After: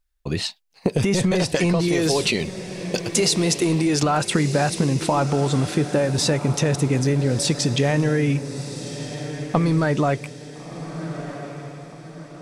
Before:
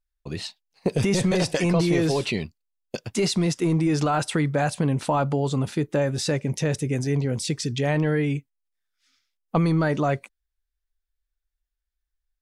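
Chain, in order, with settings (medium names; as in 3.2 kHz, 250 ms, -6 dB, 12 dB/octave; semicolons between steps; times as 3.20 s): 1.88–4.03 s: tone controls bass -6 dB, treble +7 dB; compression, threshold -24 dBFS, peak gain reduction 8 dB; echo that smears into a reverb 1367 ms, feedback 44%, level -11 dB; trim +7.5 dB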